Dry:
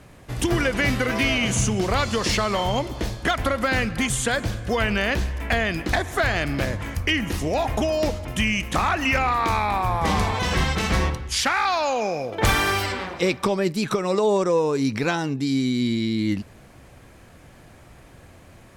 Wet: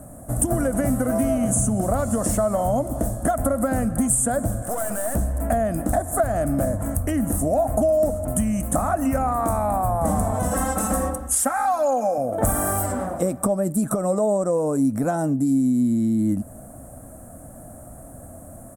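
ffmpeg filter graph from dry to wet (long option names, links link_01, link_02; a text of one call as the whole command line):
ffmpeg -i in.wav -filter_complex "[0:a]asettb=1/sr,asplit=3[link_01][link_02][link_03];[link_01]atrim=end=4.624[link_04];[link_02]atrim=start=4.62:end=5.15,asetpts=PTS-STARTPTS,afade=type=in:duration=0.004:curve=qsin,afade=type=out:start_time=0.526:duration=0.004:curve=qsin,highpass=frequency=730:poles=1,acontrast=76,aeval=exprs='(tanh(28.2*val(0)+0.5)-tanh(0.5))/28.2':channel_layout=same[link_05];[link_03]atrim=start=5.146[link_06];[link_04][link_05]acrossfade=duration=0.004:curve1=hsin:curve2=qsin[link_07];[link_07][link_06]acrossfade=duration=0.004:curve1=qsin:curve2=hsin,asettb=1/sr,asplit=3[link_08][link_09][link_10];[link_08]atrim=end=10.514[link_11];[link_09]atrim=start=10.51:end=12.18,asetpts=PTS-STARTPTS,afade=type=in:duration=0.004:curve=qsin,afade=type=out:start_time=1.666:duration=0.004:curve=qsin,lowshelf=frequency=270:gain=-11,aecho=1:1:3.8:0.92,atrim=end_sample=73647[link_12];[link_10]atrim=start=12.176[link_13];[link_11][link_12]acrossfade=duration=0.004:curve1=hsin:curve2=qsin[link_14];[link_14][link_13]acrossfade=duration=0.004:curve1=qsin:curve2=hsin,firequalizer=gain_entry='entry(160,0);entry(260,6);entry(390,-9);entry(640,9);entry(920,-8);entry(1300,-5);entry(2300,-25);entry(4500,-25);entry(8400,12);entry(13000,9)':delay=0.05:min_phase=1,acompressor=threshold=-26dB:ratio=2.5,volume=5.5dB" out.wav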